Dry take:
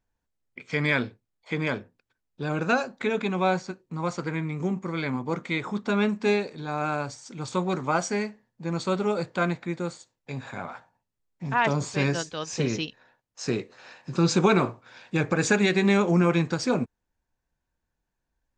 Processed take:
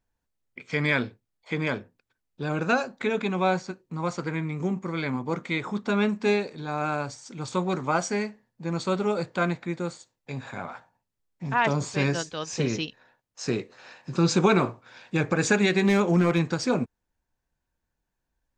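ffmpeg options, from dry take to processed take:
-filter_complex "[0:a]asettb=1/sr,asplit=3[a][b][c];[a]atrim=end=15.794[d];[b]atrim=start=15.79:end=16.39,asetpts=PTS-STARTPTS,afade=t=in:d=0.004:c=qsin,afade=t=out:st=0.596:d=0.004:c=qsin,asoftclip=type=hard:threshold=-14dB[e];[c]atrim=start=16.386[f];[d][e]acrossfade=d=0.004:c1=hsin:c2=qsin[g];[g][f]acrossfade=d=0.004:c1=qsin:c2=hsin"

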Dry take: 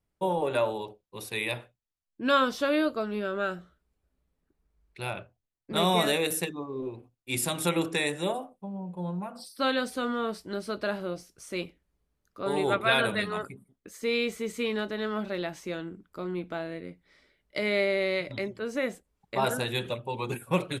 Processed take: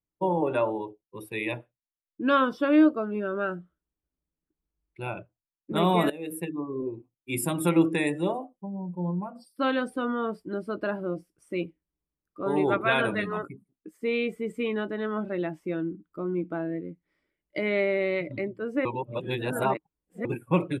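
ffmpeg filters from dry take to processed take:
-filter_complex "[0:a]asplit=4[a][b][c][d];[a]atrim=end=6.1,asetpts=PTS-STARTPTS,afade=t=out:st=6.096:d=0.004:c=hsin:silence=0.112202[e];[b]atrim=start=6.1:end=18.852,asetpts=PTS-STARTPTS,afade=t=in:d=0.6:silence=0.112202[f];[c]atrim=start=18.848:end=20.252,asetpts=PTS-STARTPTS,areverse[g];[d]atrim=start=20.248[h];[e][f]concat=n=2:v=0:a=1[i];[i][g]acrossfade=d=0.004:c1=hsin:c2=hsin[j];[j][h]acrossfade=d=0.004:c1=hsin:c2=hsin,afftdn=nr=14:nf=-39,equalizer=f=160:t=o:w=0.33:g=6,equalizer=f=315:t=o:w=0.33:g=10,equalizer=f=1k:t=o:w=0.33:g=3,equalizer=f=4k:t=o:w=0.33:g=-11,equalizer=f=6.3k:t=o:w=0.33:g=-12"

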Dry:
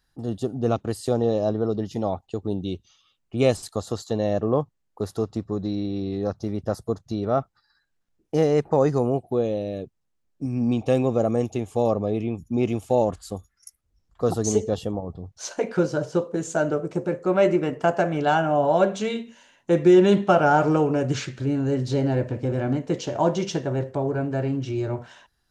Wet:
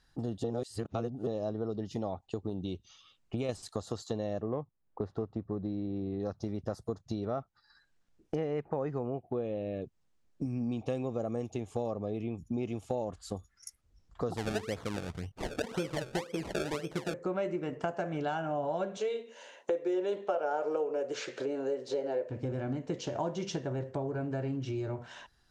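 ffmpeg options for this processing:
-filter_complex "[0:a]asettb=1/sr,asplit=3[a][b][c];[a]atrim=end=2.494[d];[b]atrim=start=2.49:end=3.49,asetpts=PTS-STARTPTS,afade=t=in:d=0.004:c=qsin,afade=t=out:st=0.996:d=0.004:c=qsin,acompressor=threshold=-23dB:ratio=2:attack=3.2:release=140:knee=1:detection=peak[e];[c]atrim=start=3.486[f];[d][e]acrossfade=d=0.004:c1=hsin:c2=qsin[g];[g][f]acrossfade=d=0.004:c1=qsin:c2=hsin,asettb=1/sr,asplit=3[h][i][j];[h]atrim=end=4.424[k];[i]atrim=start=4.42:end=6.2,asetpts=PTS-STARTPTS,afade=t=in:d=0.004:c=qsin,afade=t=out:st=1.776:d=0.004:c=qsin,adynamicsmooth=sensitivity=0.5:basefreq=2.1k[l];[j]atrim=start=6.196[m];[k][l]acrossfade=d=0.004:c1=hsin:c2=qsin[n];[n][m]acrossfade=d=0.004:c1=qsin:c2=hsin,asettb=1/sr,asplit=3[o][p][q];[o]atrim=end=8.354[r];[p]atrim=start=8.35:end=9.82,asetpts=PTS-STARTPTS,afade=t=in:d=0.004:c=qsin,afade=t=out:st=1.466:d=0.004:c=qsin,highshelf=f=3.6k:t=q:w=1.5:g=-11[s];[q]atrim=start=9.816[t];[r][s]acrossfade=d=0.004:c1=hsin:c2=qsin[u];[u][t]acrossfade=d=0.004:c1=qsin:c2=hsin,asettb=1/sr,asplit=3[v][w][x];[v]atrim=end=14.374[y];[w]atrim=start=14.37:end=17.14,asetpts=PTS-STARTPTS,afade=t=in:d=0.004:c=qsin,afade=t=out:st=2.766:d=0.004:c=qsin,acrusher=samples=30:mix=1:aa=0.000001:lfo=1:lforange=30:lforate=1.9[z];[x]atrim=start=17.136[aa];[y][z]acrossfade=d=0.004:c1=hsin:c2=qsin[ab];[ab][aa]acrossfade=d=0.004:c1=qsin:c2=hsin,asettb=1/sr,asplit=3[ac][ad][ae];[ac]atrim=end=18.974[af];[ad]atrim=start=18.97:end=22.3,asetpts=PTS-STARTPTS,afade=t=in:d=0.004:c=qsin,afade=t=out:st=3.326:d=0.004:c=qsin,highpass=f=480:t=q:w=3.4[ag];[ae]atrim=start=22.296[ah];[af][ag]acrossfade=d=0.004:c1=hsin:c2=qsin[ai];[ai][ah]acrossfade=d=0.004:c1=qsin:c2=hsin,asplit=3[aj][ak][al];[aj]atrim=end=0.442[am];[ak]atrim=start=0.438:end=1.272,asetpts=PTS-STARTPTS,areverse[an];[al]atrim=start=1.268[ao];[am][an]acrossfade=d=0.004:c1=hsin:c2=hsin[ap];[ap][ao]acrossfade=d=0.004:c1=hsin:c2=hsin,lowpass=8.6k,acompressor=threshold=-37dB:ratio=4,volume=3dB"

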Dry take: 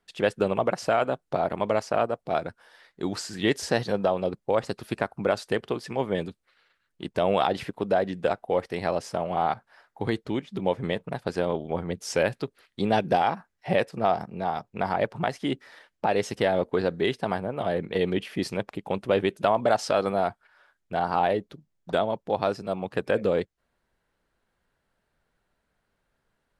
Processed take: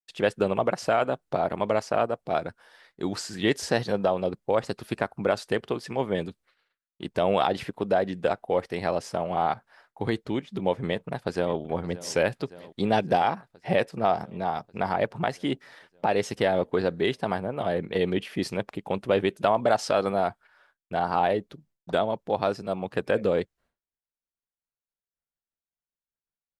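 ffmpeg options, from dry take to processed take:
-filter_complex "[0:a]asplit=2[a][b];[b]afade=t=in:st=10.86:d=0.01,afade=t=out:st=11.58:d=0.01,aecho=0:1:570|1140|1710|2280|2850|3420|3990|4560|5130|5700:0.133352|0.100014|0.0750106|0.0562579|0.0421935|0.0316451|0.0237338|0.0178004|0.0133503|0.0100127[c];[a][c]amix=inputs=2:normalize=0,agate=range=-33dB:threshold=-57dB:ratio=3:detection=peak"

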